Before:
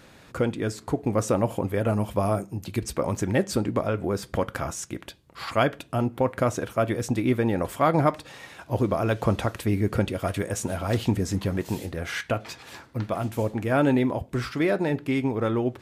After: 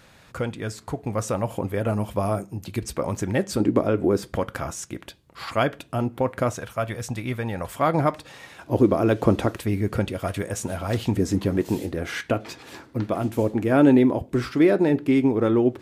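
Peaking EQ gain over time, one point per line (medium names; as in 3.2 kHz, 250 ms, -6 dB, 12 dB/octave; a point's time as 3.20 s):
peaking EQ 320 Hz 1.2 oct
-6.5 dB
from 1.54 s -0.5 dB
from 3.60 s +9.5 dB
from 4.28 s 0 dB
from 6.53 s -10.5 dB
from 7.75 s -0.5 dB
from 8.63 s +9.5 dB
from 9.57 s -0.5 dB
from 11.16 s +8 dB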